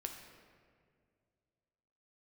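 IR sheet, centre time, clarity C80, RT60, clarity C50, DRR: 42 ms, 7.0 dB, 2.1 s, 5.5 dB, 3.0 dB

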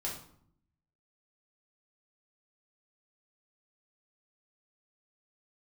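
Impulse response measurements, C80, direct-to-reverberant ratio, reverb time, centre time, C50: 10.0 dB, −4.0 dB, 0.60 s, 34 ms, 5.0 dB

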